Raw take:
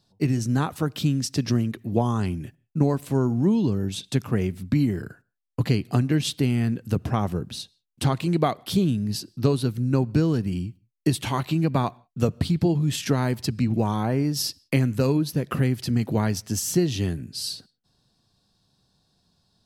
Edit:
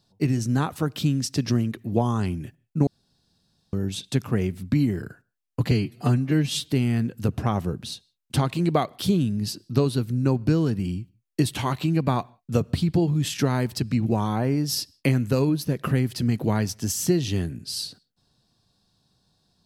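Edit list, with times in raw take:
2.87–3.73 room tone
5.71–6.36 stretch 1.5×

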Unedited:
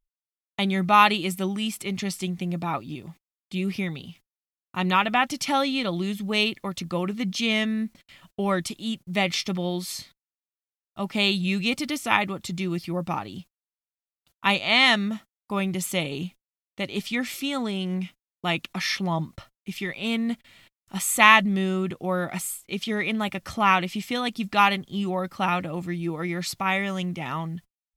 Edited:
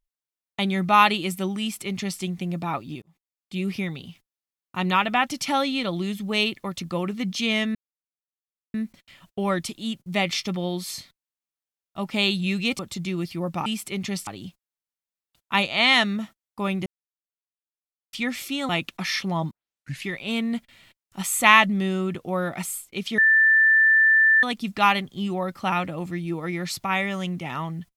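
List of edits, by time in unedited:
1.6–2.21 copy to 13.19
3.02–3.61 fade in
7.75 insert silence 0.99 s
11.8–12.32 cut
15.78–17.05 mute
17.61–18.45 cut
19.27 tape start 0.56 s
22.94–24.19 bleep 1770 Hz -13.5 dBFS

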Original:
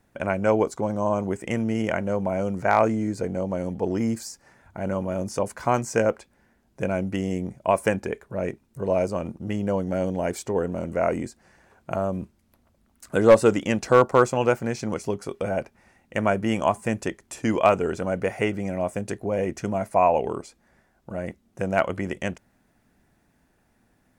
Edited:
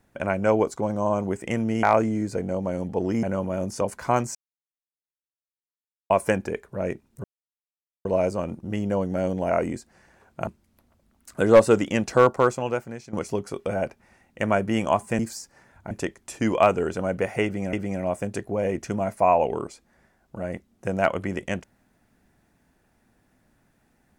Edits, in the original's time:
1.83–2.69 cut
4.09–4.81 move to 16.94
5.93–7.68 mute
8.82 insert silence 0.81 s
10.27–11 cut
11.97–12.22 cut
13.9–14.88 fade out linear, to -15 dB
18.47–18.76 loop, 2 plays

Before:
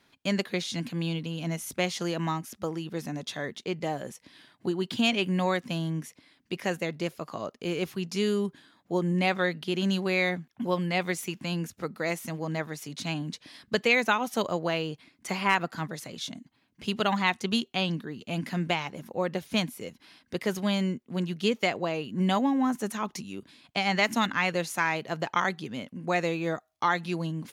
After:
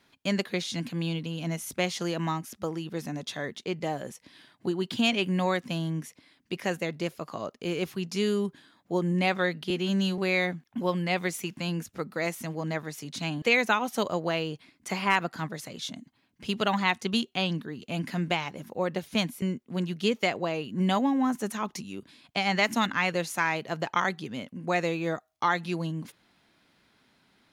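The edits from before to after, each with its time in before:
9.7–10.02 stretch 1.5×
13.26–13.81 cut
19.81–20.82 cut

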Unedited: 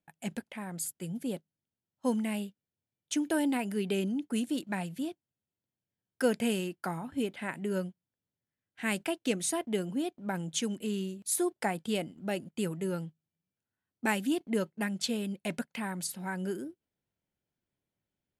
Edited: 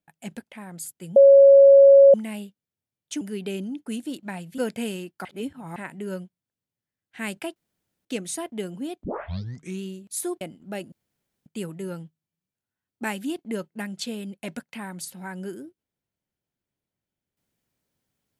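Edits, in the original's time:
1.16–2.14 bleep 553 Hz -8 dBFS
3.21–3.65 cut
5.02–6.22 cut
6.89–7.4 reverse
9.2 insert room tone 0.49 s
10.19 tape start 0.78 s
11.56–11.97 cut
12.48 insert room tone 0.54 s

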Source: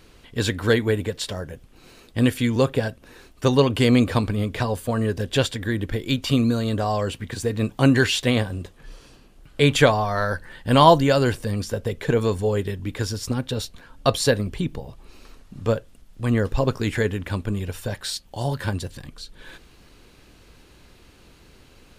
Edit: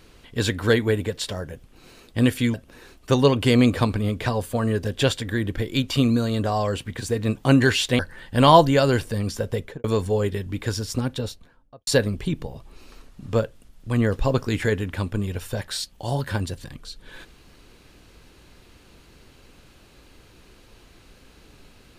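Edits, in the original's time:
2.54–2.88 cut
8.33–10.32 cut
11.92–12.17 studio fade out
13.35–14.2 studio fade out

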